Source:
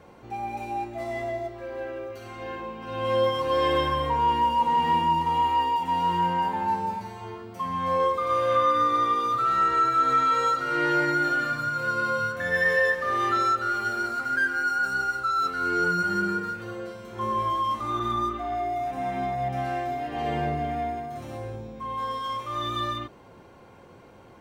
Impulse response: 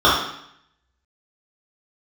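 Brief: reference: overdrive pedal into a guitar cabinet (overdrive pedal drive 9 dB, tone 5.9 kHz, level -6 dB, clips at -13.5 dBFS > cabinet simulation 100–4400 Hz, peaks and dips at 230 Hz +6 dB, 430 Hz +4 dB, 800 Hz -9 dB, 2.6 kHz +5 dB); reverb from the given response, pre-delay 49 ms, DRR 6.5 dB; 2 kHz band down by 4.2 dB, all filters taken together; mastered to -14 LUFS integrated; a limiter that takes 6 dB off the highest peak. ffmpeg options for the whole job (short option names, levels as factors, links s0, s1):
-filter_complex "[0:a]equalizer=f=2000:t=o:g=-6.5,alimiter=limit=0.1:level=0:latency=1,asplit=2[s0][s1];[1:a]atrim=start_sample=2205,adelay=49[s2];[s1][s2]afir=irnorm=-1:irlink=0,volume=0.0251[s3];[s0][s3]amix=inputs=2:normalize=0,asplit=2[s4][s5];[s5]highpass=f=720:p=1,volume=2.82,asoftclip=type=tanh:threshold=0.211[s6];[s4][s6]amix=inputs=2:normalize=0,lowpass=f=5900:p=1,volume=0.501,highpass=100,equalizer=f=230:t=q:w=4:g=6,equalizer=f=430:t=q:w=4:g=4,equalizer=f=800:t=q:w=4:g=-9,equalizer=f=2600:t=q:w=4:g=5,lowpass=f=4400:w=0.5412,lowpass=f=4400:w=1.3066,volume=3.76"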